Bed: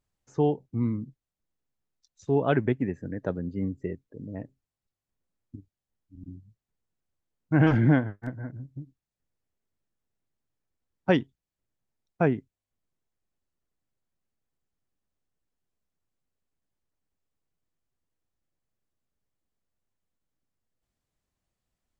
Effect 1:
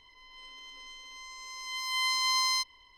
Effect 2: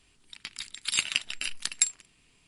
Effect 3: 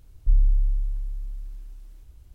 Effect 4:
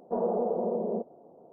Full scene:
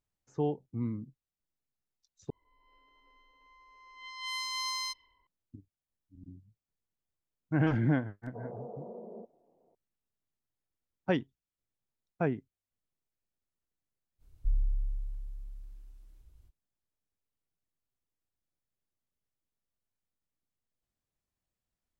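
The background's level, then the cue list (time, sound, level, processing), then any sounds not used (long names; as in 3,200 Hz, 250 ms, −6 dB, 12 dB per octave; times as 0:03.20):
bed −7 dB
0:02.30: overwrite with 1 −7.5 dB + low-pass that shuts in the quiet parts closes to 860 Hz, open at −26 dBFS
0:08.23: mix in 4 −15.5 dB
0:14.18: mix in 3 −10.5 dB, fades 0.05 s
not used: 2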